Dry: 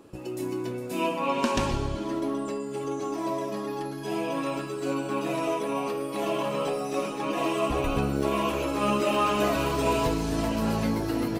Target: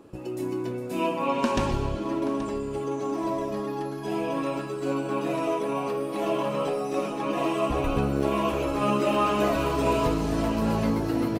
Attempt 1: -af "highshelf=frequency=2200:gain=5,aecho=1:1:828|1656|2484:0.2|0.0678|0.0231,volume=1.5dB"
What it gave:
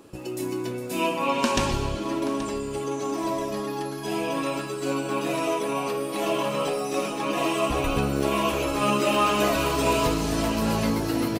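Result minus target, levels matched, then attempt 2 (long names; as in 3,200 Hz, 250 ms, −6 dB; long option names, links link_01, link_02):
4,000 Hz band +6.0 dB
-af "highshelf=frequency=2200:gain=-5.5,aecho=1:1:828|1656|2484:0.2|0.0678|0.0231,volume=1.5dB"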